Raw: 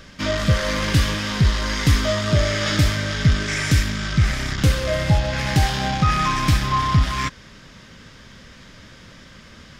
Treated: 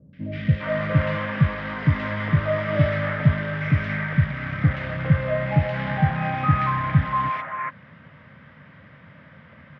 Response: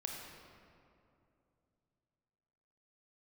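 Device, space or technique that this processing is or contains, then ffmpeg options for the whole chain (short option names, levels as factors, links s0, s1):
bass cabinet: -filter_complex "[0:a]highpass=f=80:w=0.5412,highpass=f=80:w=1.3066,equalizer=f=91:t=q:w=4:g=4,equalizer=f=150:t=q:w=4:g=9,equalizer=f=370:t=q:w=4:g=-7,equalizer=f=590:t=q:w=4:g=4,equalizer=f=2000:t=q:w=4:g=4,lowpass=f=2300:w=0.5412,lowpass=f=2300:w=1.3066,lowshelf=f=230:g=-5.5,acrossover=split=420|2100[s0][s1][s2];[s2]adelay=130[s3];[s1]adelay=410[s4];[s0][s4][s3]amix=inputs=3:normalize=0,volume=0.891"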